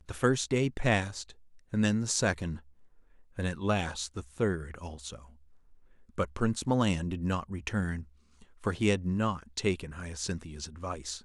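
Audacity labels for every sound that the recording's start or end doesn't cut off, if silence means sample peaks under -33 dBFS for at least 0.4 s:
1.730000	2.550000	sound
3.390000	5.150000	sound
6.180000	8.000000	sound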